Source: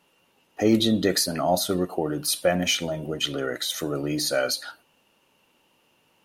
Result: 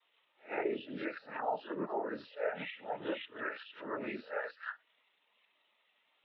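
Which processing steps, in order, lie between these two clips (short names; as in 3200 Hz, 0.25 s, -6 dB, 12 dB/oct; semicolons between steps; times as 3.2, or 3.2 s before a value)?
spectral swells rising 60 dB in 0.37 s; band-pass 2500 Hz, Q 0.83; in parallel at 0 dB: limiter -22.5 dBFS, peak gain reduction 11 dB; on the sum: compressor 12:1, threshold -36 dBFS, peak gain reduction 19.5 dB; noise vocoder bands 12; treble ducked by the level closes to 2500 Hz, closed at -36 dBFS; air absorption 270 m; spectral expander 1.5:1; gain +6 dB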